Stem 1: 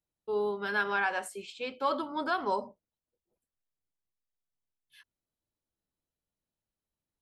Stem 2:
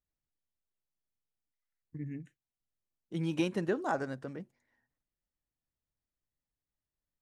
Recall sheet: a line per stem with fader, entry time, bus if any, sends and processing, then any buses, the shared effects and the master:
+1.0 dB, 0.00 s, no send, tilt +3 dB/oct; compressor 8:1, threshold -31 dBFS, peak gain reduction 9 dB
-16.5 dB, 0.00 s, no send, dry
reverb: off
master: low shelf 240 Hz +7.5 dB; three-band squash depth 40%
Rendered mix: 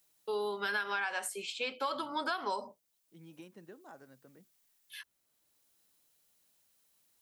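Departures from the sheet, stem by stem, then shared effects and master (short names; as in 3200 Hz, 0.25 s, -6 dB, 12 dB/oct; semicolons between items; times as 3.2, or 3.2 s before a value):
stem 2 -16.5 dB -> -28.0 dB; master: missing low shelf 240 Hz +7.5 dB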